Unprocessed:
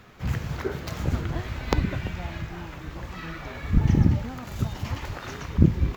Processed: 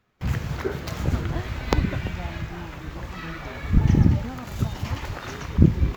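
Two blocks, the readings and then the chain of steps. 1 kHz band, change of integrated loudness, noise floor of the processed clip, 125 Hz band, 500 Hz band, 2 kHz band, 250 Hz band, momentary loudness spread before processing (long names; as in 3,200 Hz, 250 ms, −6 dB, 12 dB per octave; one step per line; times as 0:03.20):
+2.0 dB, +2.0 dB, −39 dBFS, +2.0 dB, +2.0 dB, +2.0 dB, +2.0 dB, 15 LU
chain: noise gate with hold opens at −31 dBFS
level +2 dB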